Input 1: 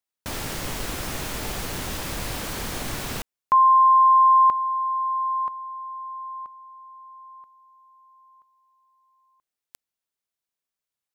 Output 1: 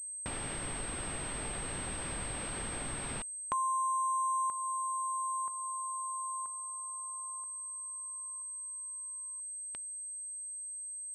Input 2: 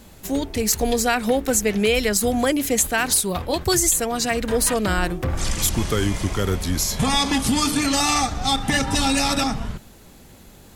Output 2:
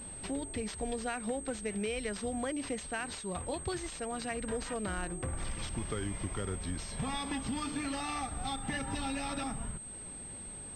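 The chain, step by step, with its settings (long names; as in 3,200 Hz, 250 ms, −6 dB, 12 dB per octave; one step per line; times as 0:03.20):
downward compressor 2.5 to 1, threshold −36 dBFS
switching amplifier with a slow clock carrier 8,300 Hz
level −3 dB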